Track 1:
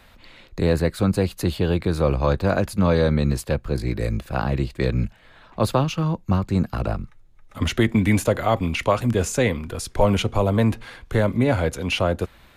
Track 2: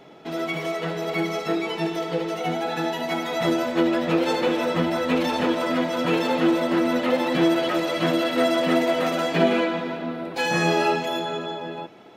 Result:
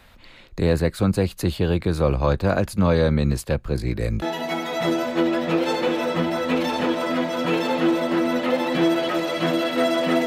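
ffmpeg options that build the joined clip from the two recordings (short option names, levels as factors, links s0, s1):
-filter_complex "[0:a]apad=whole_dur=10.26,atrim=end=10.26,atrim=end=4.222[s0];[1:a]atrim=start=2.818:end=8.86[s1];[s0][s1]acrossfade=d=0.004:c1=hsin:c2=hsin"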